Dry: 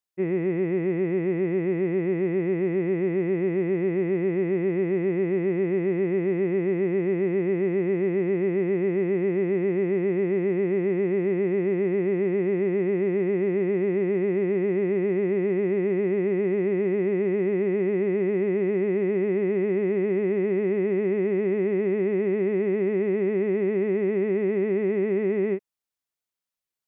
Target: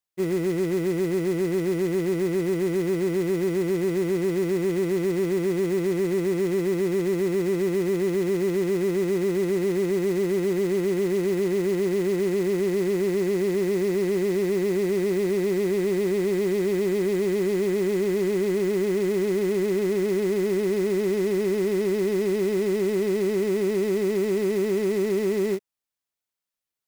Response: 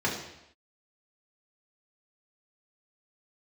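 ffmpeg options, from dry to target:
-af "aeval=exprs='0.158*(cos(1*acos(clip(val(0)/0.158,-1,1)))-cos(1*PI/2))+0.00447*(cos(5*acos(clip(val(0)/0.158,-1,1)))-cos(5*PI/2))':channel_layout=same,acrusher=bits=4:mode=log:mix=0:aa=0.000001"

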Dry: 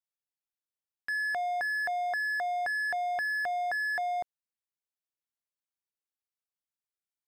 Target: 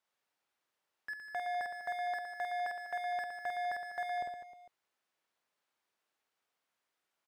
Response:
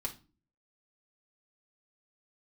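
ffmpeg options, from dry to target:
-filter_complex "[0:a]asplit=2[link_01][link_02];[link_02]highpass=frequency=720:poles=1,volume=30dB,asoftclip=type=tanh:threshold=-26dB[link_03];[link_01][link_03]amix=inputs=2:normalize=0,lowpass=frequency=1200:poles=1,volume=-6dB,aecho=1:1:50|115|199.5|309.4|452.2:0.631|0.398|0.251|0.158|0.1,volume=-5.5dB"

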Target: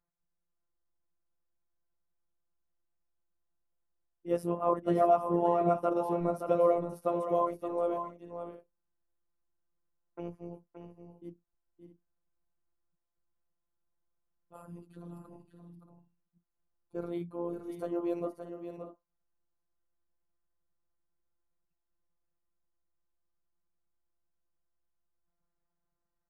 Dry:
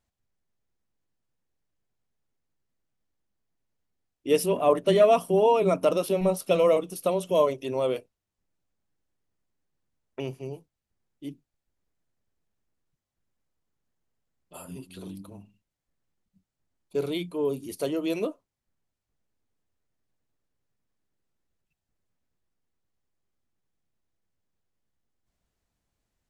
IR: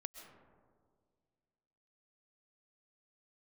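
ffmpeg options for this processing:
-filter_complex "[0:a]tremolo=f=70:d=0.857,highshelf=frequency=2000:width_type=q:width=1.5:gain=-13.5,afftfilt=real='hypot(re,im)*cos(PI*b)':imag='0':win_size=1024:overlap=0.75,asplit=2[link_01][link_02];[link_02]aecho=0:1:572|629:0.398|0.2[link_03];[link_01][link_03]amix=inputs=2:normalize=0"

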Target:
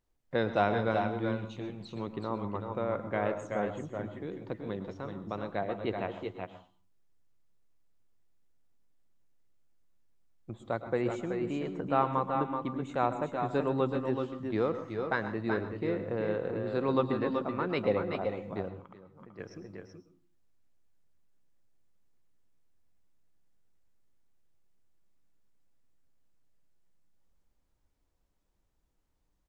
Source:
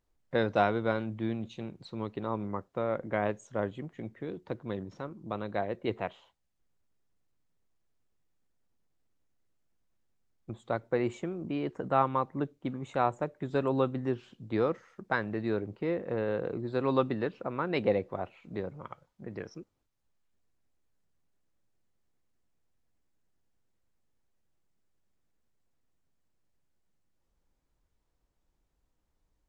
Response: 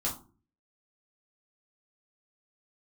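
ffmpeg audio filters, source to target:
-filter_complex "[0:a]asplit=2[link_01][link_02];[link_02]aecho=0:1:130|378|389:0.133|0.501|0.251[link_03];[link_01][link_03]amix=inputs=2:normalize=0,asplit=3[link_04][link_05][link_06];[link_04]afade=type=out:start_time=18.68:duration=0.02[link_07];[link_05]acompressor=threshold=-47dB:ratio=12,afade=type=in:start_time=18.68:duration=0.02,afade=type=out:start_time=19.38:duration=0.02[link_08];[link_06]afade=type=in:start_time=19.38:duration=0.02[link_09];[link_07][link_08][link_09]amix=inputs=3:normalize=0,asplit=2[link_10][link_11];[1:a]atrim=start_sample=2205,adelay=106[link_12];[link_11][link_12]afir=irnorm=-1:irlink=0,volume=-17.5dB[link_13];[link_10][link_13]amix=inputs=2:normalize=0,volume=-1.5dB"

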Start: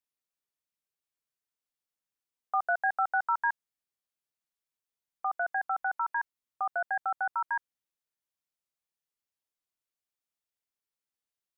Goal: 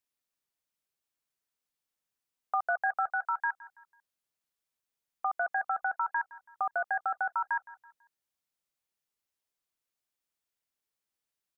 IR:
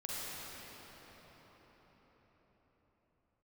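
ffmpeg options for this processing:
-filter_complex "[0:a]asplit=3[link_01][link_02][link_03];[link_01]afade=type=out:start_time=3.06:duration=0.02[link_04];[link_02]highpass=frequency=1200:poles=1,afade=type=in:start_time=3.06:duration=0.02,afade=type=out:start_time=3.5:duration=0.02[link_05];[link_03]afade=type=in:start_time=3.5:duration=0.02[link_06];[link_04][link_05][link_06]amix=inputs=3:normalize=0,acompressor=threshold=-31dB:ratio=2,aecho=1:1:165|330|495:0.106|0.0413|0.0161,volume=2.5dB"

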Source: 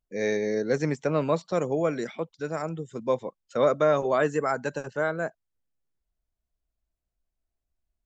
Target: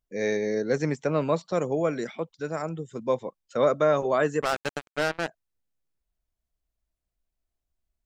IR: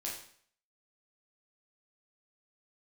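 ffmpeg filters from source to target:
-filter_complex "[0:a]asplit=3[link_01][link_02][link_03];[link_01]afade=type=out:start_time=4.4:duration=0.02[link_04];[link_02]acrusher=bits=3:mix=0:aa=0.5,afade=type=in:start_time=4.4:duration=0.02,afade=type=out:start_time=5.27:duration=0.02[link_05];[link_03]afade=type=in:start_time=5.27:duration=0.02[link_06];[link_04][link_05][link_06]amix=inputs=3:normalize=0"

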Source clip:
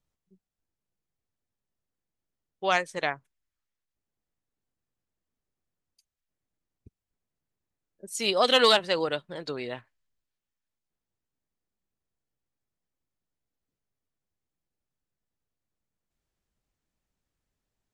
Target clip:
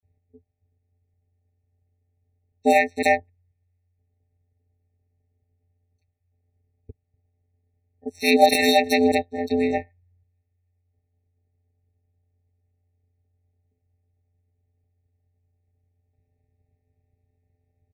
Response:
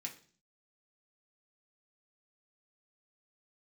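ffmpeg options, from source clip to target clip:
-filter_complex "[0:a]acrossover=split=5600[link_01][link_02];[link_02]acompressor=threshold=-45dB:ratio=4:attack=1:release=60[link_03];[link_01][link_03]amix=inputs=2:normalize=0,highshelf=frequency=6400:gain=3.5,afftfilt=real='hypot(re,im)*cos(PI*b)':imag='0':win_size=512:overlap=0.75,adynamicsmooth=sensitivity=4.5:basefreq=1400,aeval=exprs='val(0)*sin(2*PI*89*n/s)':channel_layout=same,acrossover=split=4600[link_04][link_05];[link_04]adelay=30[link_06];[link_06][link_05]amix=inputs=2:normalize=0,alimiter=level_in=19.5dB:limit=-1dB:release=50:level=0:latency=1,afftfilt=real='re*eq(mod(floor(b*sr/1024/900),2),0)':imag='im*eq(mod(floor(b*sr/1024/900),2),0)':win_size=1024:overlap=0.75"

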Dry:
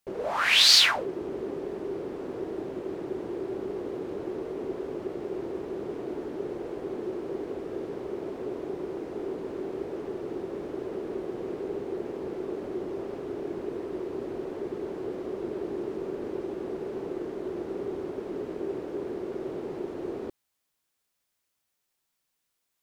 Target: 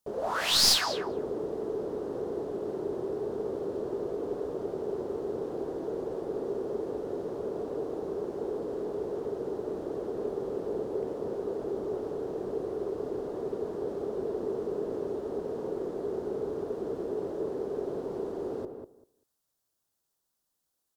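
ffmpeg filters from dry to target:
ffmpeg -i in.wav -filter_complex "[0:a]equalizer=frequency=2100:width_type=o:width=1:gain=-12.5,asplit=2[link_01][link_02];[link_02]adelay=212,lowpass=frequency=1300:poles=1,volume=-6.5dB,asplit=2[link_03][link_04];[link_04]adelay=212,lowpass=frequency=1300:poles=1,volume=0.17,asplit=2[link_05][link_06];[link_06]adelay=212,lowpass=frequency=1300:poles=1,volume=0.17[link_07];[link_03][link_05][link_07]amix=inputs=3:normalize=0[link_08];[link_01][link_08]amix=inputs=2:normalize=0,asetrate=48000,aresample=44100,aeval=exprs='clip(val(0),-1,0.075)':channel_layout=same" out.wav

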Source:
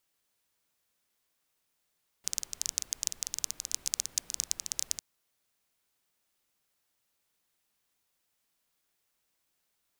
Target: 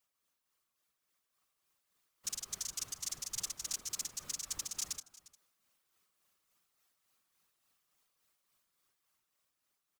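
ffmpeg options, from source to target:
ffmpeg -i in.wav -af "equalizer=frequency=1200:width=6.6:gain=9,aecho=1:1:5.3:0.65,bandreject=frequency=57.83:width_type=h:width=4,bandreject=frequency=115.66:width_type=h:width=4,bandreject=frequency=173.49:width_type=h:width=4,bandreject=frequency=231.32:width_type=h:width=4,bandreject=frequency=289.15:width_type=h:width=4,bandreject=frequency=346.98:width_type=h:width=4,bandreject=frequency=404.81:width_type=h:width=4,bandreject=frequency=462.64:width_type=h:width=4,bandreject=frequency=520.47:width_type=h:width=4,bandreject=frequency=578.3:width_type=h:width=4,bandreject=frequency=636.13:width_type=h:width=4,bandreject=frequency=693.96:width_type=h:width=4,bandreject=frequency=751.79:width_type=h:width=4,bandreject=frequency=809.62:width_type=h:width=4,bandreject=frequency=867.45:width_type=h:width=4,bandreject=frequency=925.28:width_type=h:width=4,bandreject=frequency=983.11:width_type=h:width=4,bandreject=frequency=1040.94:width_type=h:width=4,bandreject=frequency=1098.77:width_type=h:width=4,bandreject=frequency=1156.6:width_type=h:width=4,bandreject=frequency=1214.43:width_type=h:width=4,bandreject=frequency=1272.26:width_type=h:width=4,bandreject=frequency=1330.09:width_type=h:width=4,bandreject=frequency=1387.92:width_type=h:width=4,bandreject=frequency=1445.75:width_type=h:width=4,bandreject=frequency=1503.58:width_type=h:width=4,bandreject=frequency=1561.41:width_type=h:width=4,bandreject=frequency=1619.24:width_type=h:width=4,afftfilt=real='hypot(re,im)*cos(2*PI*random(0))':imag='hypot(re,im)*sin(2*PI*random(1))':win_size=512:overlap=0.75,alimiter=level_in=7dB:limit=-24dB:level=0:latency=1:release=15,volume=-7dB,tremolo=f=3.5:d=0.44,dynaudnorm=framelen=490:gausssize=7:maxgain=5.5dB,aecho=1:1:353:0.1,volume=1dB" out.wav

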